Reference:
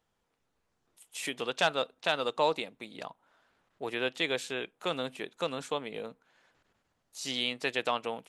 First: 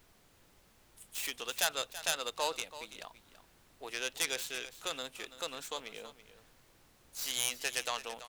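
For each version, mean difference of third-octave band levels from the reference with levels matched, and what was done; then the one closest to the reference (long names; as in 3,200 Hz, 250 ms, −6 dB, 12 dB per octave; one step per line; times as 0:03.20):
9.0 dB: stylus tracing distortion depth 0.14 ms
spectral tilt +3 dB per octave
background noise pink −58 dBFS
single-tap delay 332 ms −14 dB
level −6.5 dB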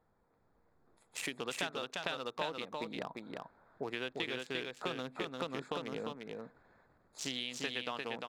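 7.0 dB: adaptive Wiener filter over 15 samples
dynamic equaliser 590 Hz, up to −5 dB, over −43 dBFS, Q 0.94
downward compressor 6 to 1, threshold −42 dBFS, peak gain reduction 17.5 dB
on a send: single-tap delay 349 ms −3.5 dB
on the sum: level +6 dB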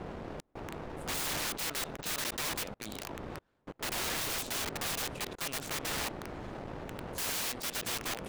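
15.0 dB: wind on the microphone 550 Hz −38 dBFS
output level in coarse steps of 18 dB
leveller curve on the samples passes 3
wrap-around overflow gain 32 dB
level +2.5 dB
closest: second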